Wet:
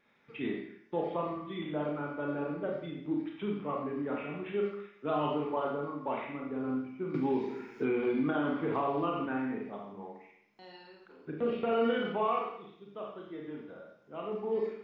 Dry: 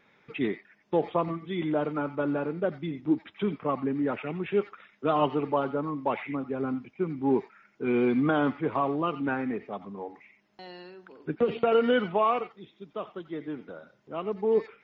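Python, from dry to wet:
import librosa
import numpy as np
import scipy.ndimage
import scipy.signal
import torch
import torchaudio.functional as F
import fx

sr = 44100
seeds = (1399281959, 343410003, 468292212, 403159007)

y = fx.rev_schroeder(x, sr, rt60_s=0.66, comb_ms=27, drr_db=-1.0)
y = fx.band_squash(y, sr, depth_pct=100, at=(7.14, 9.26))
y = F.gain(torch.from_numpy(y), -9.0).numpy()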